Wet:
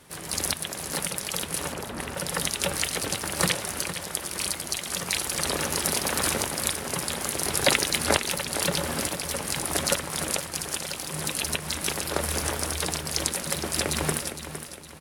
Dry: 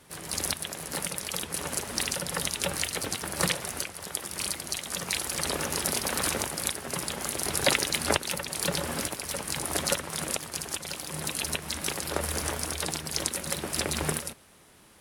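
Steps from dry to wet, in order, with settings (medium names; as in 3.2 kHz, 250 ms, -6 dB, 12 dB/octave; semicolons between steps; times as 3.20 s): 1.72–2.17 s: low-pass 1.6 kHz 12 dB/octave; feedback delay 461 ms, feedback 41%, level -10.5 dB; trim +2.5 dB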